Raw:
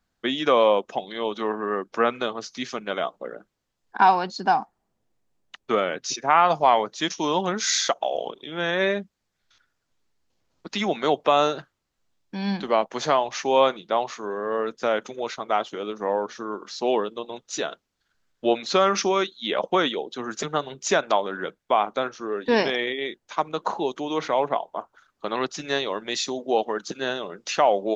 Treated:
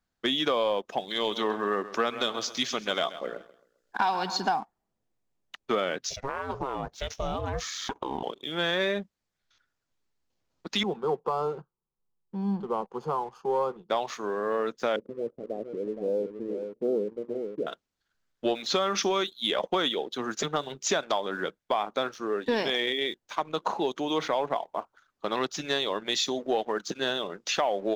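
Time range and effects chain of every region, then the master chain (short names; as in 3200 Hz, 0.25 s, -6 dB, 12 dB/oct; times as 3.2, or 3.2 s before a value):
1.08–4.49 high shelf 2700 Hz +7.5 dB + feedback echo 0.132 s, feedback 45%, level -16 dB
6.09–8.23 compressor 12:1, threshold -24 dBFS + tilt -2 dB/oct + ring modulator 270 Hz
10.83–13.9 self-modulated delay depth 0.097 ms + running mean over 23 samples + fixed phaser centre 420 Hz, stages 8
14.96–17.67 elliptic low-pass 520 Hz, stop band 80 dB + echo 0.468 s -8.5 dB
whole clip: dynamic EQ 3400 Hz, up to +7 dB, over -46 dBFS, Q 6.1; compressor, threshold -21 dBFS; sample leveller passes 1; gain -4.5 dB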